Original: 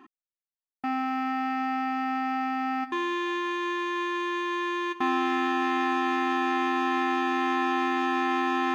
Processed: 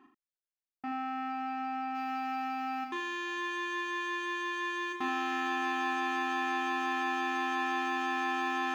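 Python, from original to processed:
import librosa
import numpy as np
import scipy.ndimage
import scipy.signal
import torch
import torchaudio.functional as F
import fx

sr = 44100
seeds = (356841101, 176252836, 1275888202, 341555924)

y = fx.high_shelf(x, sr, hz=3400.0, db=fx.steps((0.0, -4.0), (1.94, 6.5)))
y = fx.room_early_taps(y, sr, ms=(28, 39, 79), db=(-11.0, -8.0, -7.5))
y = y * 10.0 ** (-8.0 / 20.0)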